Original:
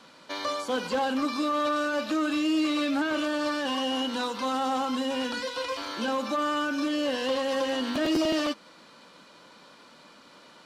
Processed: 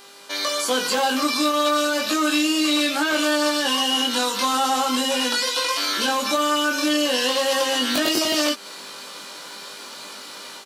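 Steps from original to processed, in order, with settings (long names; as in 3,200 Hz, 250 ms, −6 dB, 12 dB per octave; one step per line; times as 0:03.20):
automatic gain control gain up to 10 dB
RIAA equalisation recording
downward compressor 2 to 1, threshold −25 dBFS, peak gain reduction 6.5 dB
low-shelf EQ 450 Hz +3 dB
double-tracking delay 20 ms −3 dB
hum with harmonics 400 Hz, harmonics 32, −50 dBFS −3 dB per octave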